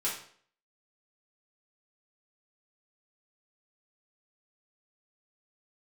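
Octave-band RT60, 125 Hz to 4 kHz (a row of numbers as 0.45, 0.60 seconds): 0.50, 0.55, 0.55, 0.50, 0.50, 0.50 seconds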